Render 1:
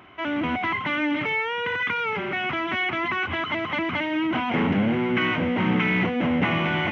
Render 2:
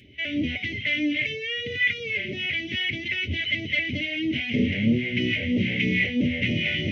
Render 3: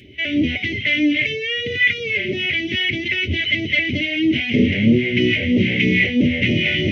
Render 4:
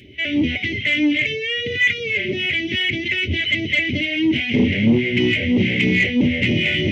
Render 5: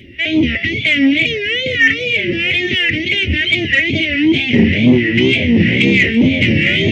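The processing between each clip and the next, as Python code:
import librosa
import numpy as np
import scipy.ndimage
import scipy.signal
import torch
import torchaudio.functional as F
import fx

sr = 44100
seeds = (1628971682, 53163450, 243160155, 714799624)

y1 = fx.phaser_stages(x, sr, stages=2, low_hz=250.0, high_hz=1300.0, hz=3.1, feedback_pct=45)
y1 = scipy.signal.sosfilt(scipy.signal.ellip(3, 1.0, 80, [560.0, 2000.0], 'bandstop', fs=sr, output='sos'), y1)
y1 = fx.notch_comb(y1, sr, f0_hz=170.0)
y1 = y1 * librosa.db_to_amplitude(5.0)
y2 = fx.peak_eq(y1, sr, hz=360.0, db=6.0, octaves=0.36)
y2 = y2 * librosa.db_to_amplitude(6.5)
y3 = 10.0 ** (-5.5 / 20.0) * np.tanh(y2 / 10.0 ** (-5.5 / 20.0))
y4 = fx.wow_flutter(y3, sr, seeds[0], rate_hz=2.1, depth_cents=150.0)
y4 = y4 + 10.0 ** (-14.0 / 20.0) * np.pad(y4, (int(813 * sr / 1000.0), 0))[:len(y4)]
y4 = y4 * librosa.db_to_amplitude(5.5)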